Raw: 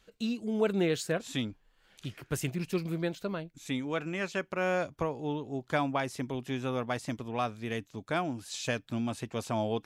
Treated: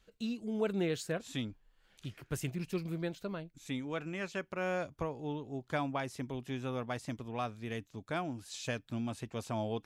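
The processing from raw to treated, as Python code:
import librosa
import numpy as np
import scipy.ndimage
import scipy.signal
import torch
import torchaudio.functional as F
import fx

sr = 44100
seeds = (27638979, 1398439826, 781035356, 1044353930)

y = fx.low_shelf(x, sr, hz=99.0, db=6.5)
y = y * 10.0 ** (-5.5 / 20.0)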